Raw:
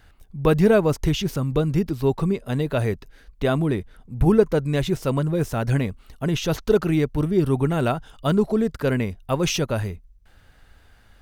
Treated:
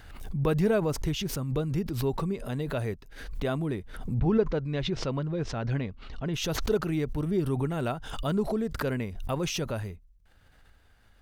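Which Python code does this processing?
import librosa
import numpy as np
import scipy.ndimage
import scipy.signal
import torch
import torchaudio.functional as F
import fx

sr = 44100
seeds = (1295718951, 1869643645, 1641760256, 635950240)

y = fx.lowpass(x, sr, hz=5000.0, slope=24, at=(4.19, 6.34))
y = fx.pre_swell(y, sr, db_per_s=58.0)
y = y * 10.0 ** (-8.5 / 20.0)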